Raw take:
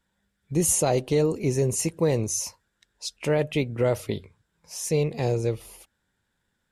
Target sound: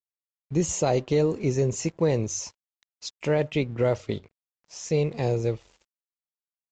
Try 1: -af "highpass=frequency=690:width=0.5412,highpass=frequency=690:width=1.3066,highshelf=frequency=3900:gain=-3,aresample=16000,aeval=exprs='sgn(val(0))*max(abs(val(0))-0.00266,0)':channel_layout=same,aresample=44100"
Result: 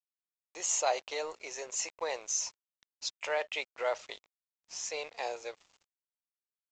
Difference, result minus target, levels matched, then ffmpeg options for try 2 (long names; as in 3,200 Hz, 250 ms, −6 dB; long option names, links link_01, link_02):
500 Hz band −3.0 dB
-af "highshelf=frequency=3900:gain=-3,aresample=16000,aeval=exprs='sgn(val(0))*max(abs(val(0))-0.00266,0)':channel_layout=same,aresample=44100"